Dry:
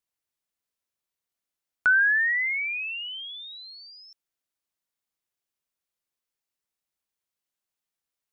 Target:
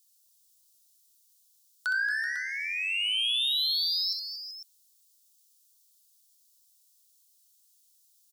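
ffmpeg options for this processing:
ffmpeg -i in.wav -filter_complex "[0:a]aexciter=amount=14.3:drive=6.9:freq=3300,asoftclip=type=tanh:threshold=-18.5dB,asettb=1/sr,asplit=3[link_01][link_02][link_03];[link_01]atrim=end=2.104[link_04];[link_02]atrim=start=2.1:end=2.52,asetpts=PTS-STARTPTS,afade=type=in:duration=0.004:curve=qsin,afade=type=out:start_time=0.416:duration=0.004:curve=qsin,adynamicsmooth=sensitivity=2.5:basefreq=900[link_05];[link_03]atrim=start=2.516[link_06];[link_04][link_05]acrossfade=duration=0.004:curve1=hsin:curve2=qsin[link_07];[link_07][link_06]acrossfade=duration=0.004:curve1=qsin:curve2=hsin,asplit=2[link_08][link_09];[link_09]aecho=0:1:64|228|381|499:0.447|0.266|0.2|0.237[link_10];[link_08][link_10]amix=inputs=2:normalize=0,volume=-6dB" out.wav

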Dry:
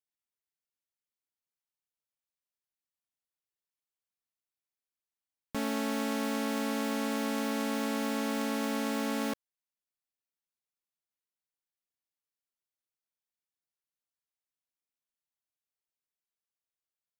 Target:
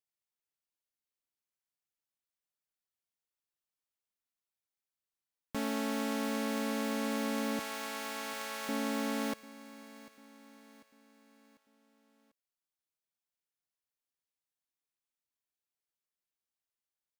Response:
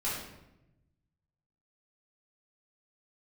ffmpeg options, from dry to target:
-filter_complex "[0:a]asettb=1/sr,asplit=3[link_01][link_02][link_03];[link_01]atrim=end=7.594[link_04];[link_02]atrim=start=7.59:end=8.69,asetpts=PTS-STARTPTS,afade=type=in:duration=0.004:curve=qsin,afade=type=out:start_time=1.096:duration=0.004:curve=qsin,highpass=790[link_05];[link_03]atrim=start=8.686[link_06];[link_04][link_05]acrossfade=duration=0.004:curve1=hsin:curve2=qsin[link_07];[link_07][link_06]acrossfade=duration=0.004:curve1=qsin:curve2=hsin,aecho=1:1:745|1490|2235|2980:0.126|0.0617|0.0302|0.0148,volume=-2dB"

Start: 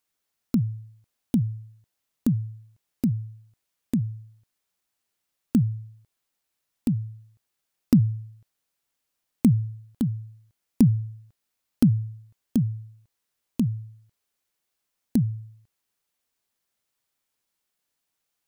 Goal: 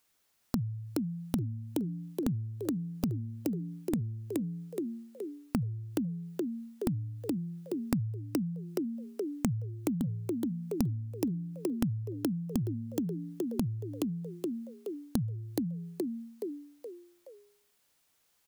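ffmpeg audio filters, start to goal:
ffmpeg -i in.wav -filter_complex "[0:a]asplit=2[link_01][link_02];[link_02]asplit=5[link_03][link_04][link_05][link_06][link_07];[link_03]adelay=422,afreqshift=60,volume=-6dB[link_08];[link_04]adelay=844,afreqshift=120,volume=-14dB[link_09];[link_05]adelay=1266,afreqshift=180,volume=-21.9dB[link_10];[link_06]adelay=1688,afreqshift=240,volume=-29.9dB[link_11];[link_07]adelay=2110,afreqshift=300,volume=-37.8dB[link_12];[link_08][link_09][link_10][link_11][link_12]amix=inputs=5:normalize=0[link_13];[link_01][link_13]amix=inputs=2:normalize=0,acompressor=threshold=-38dB:ratio=5,volume=7dB" out.wav

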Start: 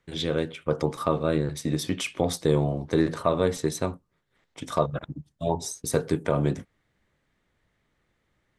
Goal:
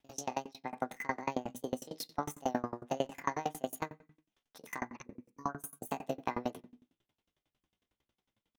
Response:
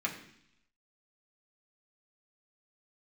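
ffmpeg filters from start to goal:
-filter_complex "[0:a]asetrate=74167,aresample=44100,atempo=0.594604,asplit=2[link_01][link_02];[1:a]atrim=start_sample=2205,afade=type=out:start_time=0.42:duration=0.01,atrim=end_sample=18963[link_03];[link_02][link_03]afir=irnorm=-1:irlink=0,volume=-13.5dB[link_04];[link_01][link_04]amix=inputs=2:normalize=0,aeval=exprs='val(0)*pow(10,-29*if(lt(mod(11*n/s,1),2*abs(11)/1000),1-mod(11*n/s,1)/(2*abs(11)/1000),(mod(11*n/s,1)-2*abs(11)/1000)/(1-2*abs(11)/1000))/20)':channel_layout=same,volume=-5dB"

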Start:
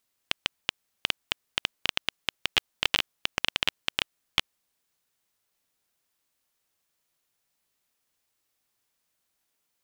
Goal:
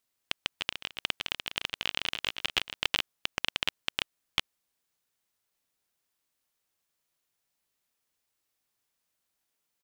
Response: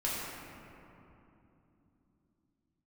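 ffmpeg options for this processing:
-filter_complex "[0:a]asplit=3[link_01][link_02][link_03];[link_01]afade=type=out:start_time=0.58:duration=0.02[link_04];[link_02]aecho=1:1:160|296|411.6|509.9|593.4:0.631|0.398|0.251|0.158|0.1,afade=type=in:start_time=0.58:duration=0.02,afade=type=out:start_time=2.72:duration=0.02[link_05];[link_03]afade=type=in:start_time=2.72:duration=0.02[link_06];[link_04][link_05][link_06]amix=inputs=3:normalize=0,volume=-3.5dB"

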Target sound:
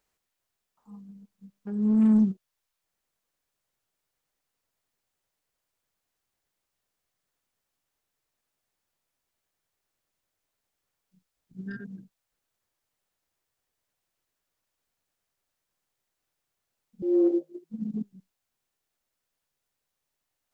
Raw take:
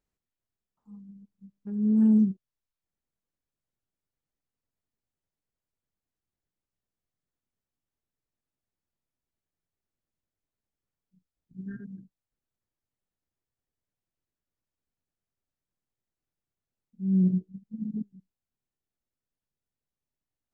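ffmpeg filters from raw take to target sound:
ffmpeg -i in.wav -filter_complex "[0:a]acrossover=split=470[link_01][link_02];[link_02]aeval=exprs='0.0133*sin(PI/2*2.24*val(0)/0.0133)':channel_layout=same[link_03];[link_01][link_03]amix=inputs=2:normalize=0,asettb=1/sr,asplit=3[link_04][link_05][link_06];[link_04]atrim=end=17.024[link_07];[link_05]atrim=start=17.02:end=17.7,asetpts=PTS-STARTPTS,afade=type=in:duration=0.004:curve=qsin,afade=type=out:start_time=0.676:duration=0.004:curve=qsin,afreqshift=160[link_08];[link_06]atrim=start=17.696[link_09];[link_07][link_08]acrossfade=duration=0.004:curve1=hsin:curve2=qsin[link_10];[link_10][link_09]acrossfade=duration=0.004:curve1=qsin:curve2=hsin" out.wav

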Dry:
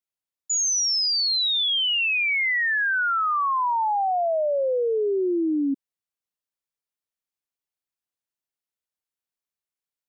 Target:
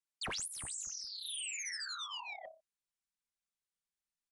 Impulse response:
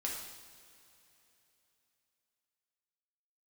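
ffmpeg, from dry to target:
-af "bass=frequency=250:gain=-10,treble=frequency=4000:gain=5,aecho=1:1:69|138|207|276|345:0.119|0.0677|0.0386|0.022|0.0125,asetrate=103194,aresample=44100,aecho=1:1:5.1:0.54,asoftclip=type=tanh:threshold=-23.5dB,asubboost=boost=8:cutoff=210,afftfilt=real='re*lt(hypot(re,im),0.126)':imag='im*lt(hypot(re,im),0.126)':win_size=1024:overlap=0.75,volume=-1dB" -ar 22050 -c:a aac -b:a 96k

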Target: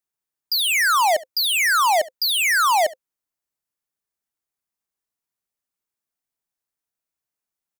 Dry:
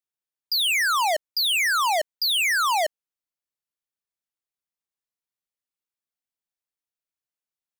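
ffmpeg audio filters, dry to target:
ffmpeg -i in.wav -af "equalizer=frequency=3300:width_type=o:width=1.4:gain=-5,bandreject=frequency=520:width=12,aecho=1:1:70:0.1,volume=5.5dB" out.wav

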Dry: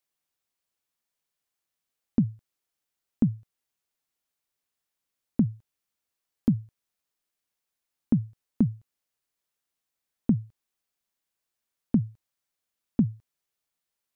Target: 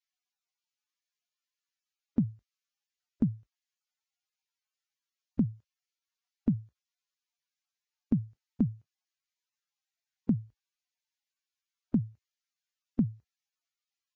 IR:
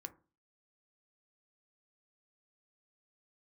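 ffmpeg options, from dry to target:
-af "volume=-4.5dB" -ar 16000 -c:a libvorbis -b:a 32k

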